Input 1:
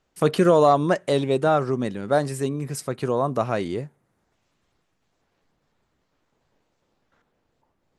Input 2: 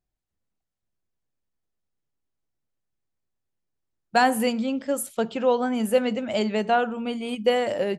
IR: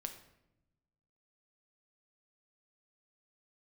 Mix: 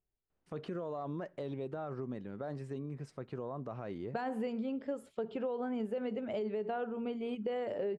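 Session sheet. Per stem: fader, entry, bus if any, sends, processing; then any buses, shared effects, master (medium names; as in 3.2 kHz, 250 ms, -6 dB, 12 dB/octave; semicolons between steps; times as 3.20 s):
-12.0 dB, 0.30 s, send -24 dB, peak limiter -16.5 dBFS, peak gain reduction 10 dB
-5.5 dB, 0.00 s, no send, peaking EQ 420 Hz +12 dB 0.24 oct; band-stop 6 kHz, Q 14; peak limiter -15 dBFS, peak gain reduction 9 dB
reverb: on, RT60 0.90 s, pre-delay 6 ms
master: tape spacing loss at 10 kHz 25 dB; compression 3:1, threshold -35 dBFS, peak gain reduction 7.5 dB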